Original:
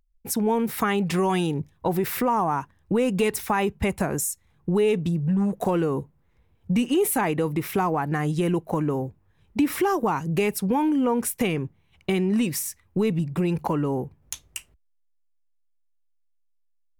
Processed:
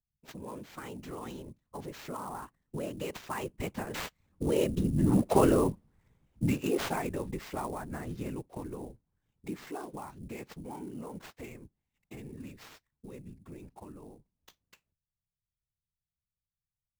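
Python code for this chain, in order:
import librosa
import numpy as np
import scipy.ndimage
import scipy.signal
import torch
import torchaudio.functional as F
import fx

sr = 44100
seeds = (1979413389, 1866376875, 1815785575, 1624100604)

y = fx.doppler_pass(x, sr, speed_mps=20, closest_m=10.0, pass_at_s=5.49)
y = fx.whisperise(y, sr, seeds[0])
y = fx.sample_hold(y, sr, seeds[1], rate_hz=10000.0, jitter_pct=20)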